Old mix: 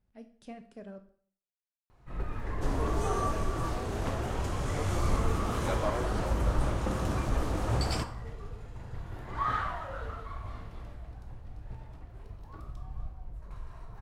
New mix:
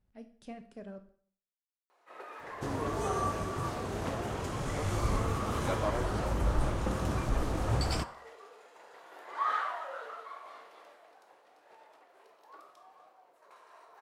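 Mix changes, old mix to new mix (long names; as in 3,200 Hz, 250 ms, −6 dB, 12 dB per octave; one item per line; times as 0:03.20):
first sound: add high-pass filter 450 Hz 24 dB per octave
second sound: send −6.0 dB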